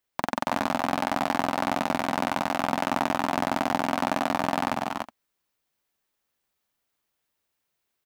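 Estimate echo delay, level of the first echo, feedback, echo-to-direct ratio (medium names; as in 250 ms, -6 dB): 188 ms, -9.0 dB, no regular repeats, -1.0 dB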